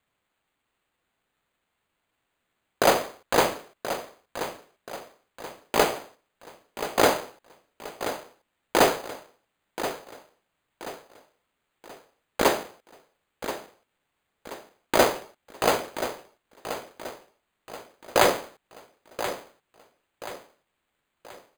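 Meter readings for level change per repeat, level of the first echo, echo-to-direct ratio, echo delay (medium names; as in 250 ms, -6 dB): -8.0 dB, -11.0 dB, -10.0 dB, 1030 ms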